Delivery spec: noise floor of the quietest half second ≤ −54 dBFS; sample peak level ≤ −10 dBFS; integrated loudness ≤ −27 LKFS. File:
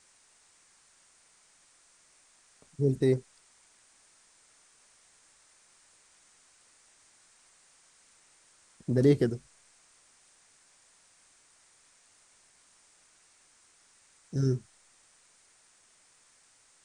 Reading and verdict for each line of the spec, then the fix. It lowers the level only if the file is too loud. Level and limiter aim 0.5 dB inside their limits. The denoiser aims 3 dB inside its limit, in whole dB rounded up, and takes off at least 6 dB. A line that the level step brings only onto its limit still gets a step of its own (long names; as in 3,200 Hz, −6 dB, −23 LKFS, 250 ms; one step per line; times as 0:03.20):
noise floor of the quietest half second −64 dBFS: in spec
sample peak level −11.5 dBFS: in spec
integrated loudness −28.5 LKFS: in spec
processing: no processing needed